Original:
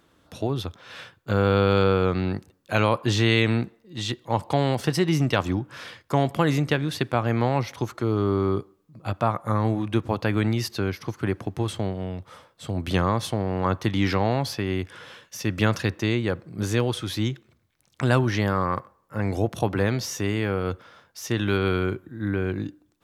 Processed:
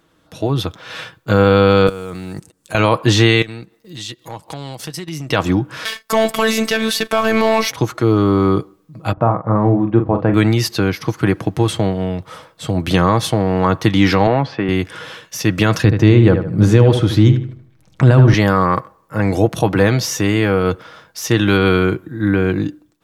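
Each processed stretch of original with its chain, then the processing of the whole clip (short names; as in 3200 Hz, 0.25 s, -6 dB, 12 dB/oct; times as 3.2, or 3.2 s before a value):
1.87–2.75 block floating point 7-bit + bell 8500 Hz +15 dB 0.95 oct + level quantiser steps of 19 dB
3.42–5.3 high shelf 3200 Hz +11 dB + compressor 3:1, threshold -41 dBFS + transient shaper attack -3 dB, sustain -10 dB
5.85–7.71 tilt +2 dB/oct + sample leveller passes 2 + robotiser 222 Hz
9.13–10.34 LPF 1000 Hz + doubler 43 ms -7.5 dB
14.27–14.69 BPF 150–2300 Hz + air absorption 53 m
15.84–18.34 tilt -2.5 dB/oct + darkening echo 76 ms, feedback 38%, low-pass 3000 Hz, level -9 dB
whole clip: comb 6.3 ms, depth 35%; limiter -11 dBFS; AGC gain up to 9 dB; gain +2 dB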